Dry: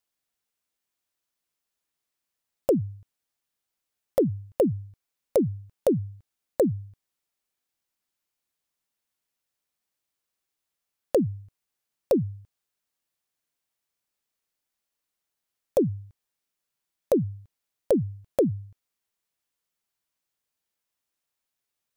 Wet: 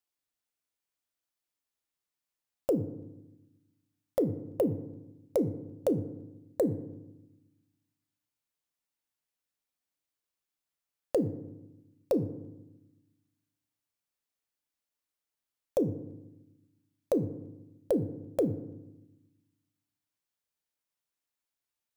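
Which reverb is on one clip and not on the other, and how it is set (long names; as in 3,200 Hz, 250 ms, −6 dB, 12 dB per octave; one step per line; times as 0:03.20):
feedback delay network reverb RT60 0.97 s, low-frequency decay 1.5×, high-frequency decay 0.45×, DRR 10.5 dB
level −6 dB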